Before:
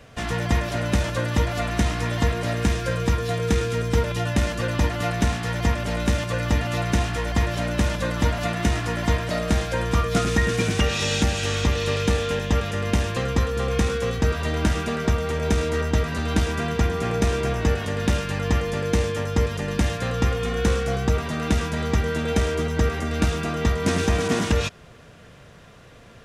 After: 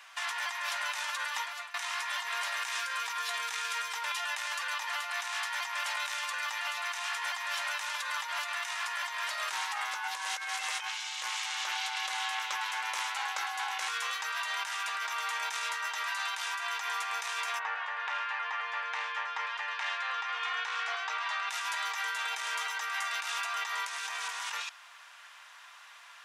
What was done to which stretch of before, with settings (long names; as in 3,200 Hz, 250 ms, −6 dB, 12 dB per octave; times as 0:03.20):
0:01.09–0:01.74: fade out, to −20.5 dB
0:09.52–0:13.88: ring modulation 300 Hz
0:17.58–0:21.48: low-pass filter 1,700 Hz → 4,400 Hz
whole clip: Chebyshev high-pass filter 900 Hz, order 4; compressor whose output falls as the input rises −35 dBFS, ratio −1